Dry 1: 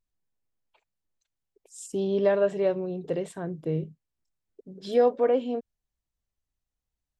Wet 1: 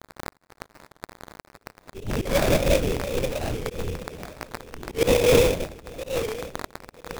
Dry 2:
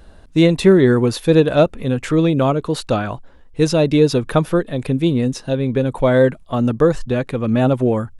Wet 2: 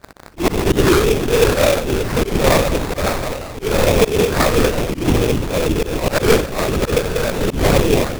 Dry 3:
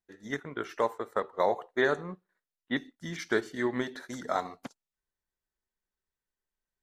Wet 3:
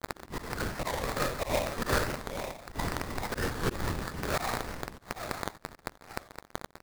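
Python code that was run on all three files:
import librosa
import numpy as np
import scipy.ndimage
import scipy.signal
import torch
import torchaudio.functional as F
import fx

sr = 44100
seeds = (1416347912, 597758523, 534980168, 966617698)

y = fx.reverse_delay_fb(x, sr, ms=475, feedback_pct=42, wet_db=-11.5)
y = scipy.signal.sosfilt(scipy.signal.butter(2, 86.0, 'highpass', fs=sr, output='sos'), y)
y = fx.hum_notches(y, sr, base_hz=60, count=3)
y = fx.rev_schroeder(y, sr, rt60_s=0.58, comb_ms=31, drr_db=-8.5)
y = fx.lpc_vocoder(y, sr, seeds[0], excitation='whisper', order=8)
y = fx.dmg_crackle(y, sr, seeds[1], per_s=230.0, level_db=-23.0)
y = fx.high_shelf(y, sr, hz=2100.0, db=10.5)
y = fx.rider(y, sr, range_db=4, speed_s=2.0)
y = fx.auto_swell(y, sr, attack_ms=129.0)
y = fx.sample_hold(y, sr, seeds[2], rate_hz=3000.0, jitter_pct=20)
y = fx.record_warp(y, sr, rpm=45.0, depth_cents=160.0)
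y = y * librosa.db_to_amplitude(-8.0)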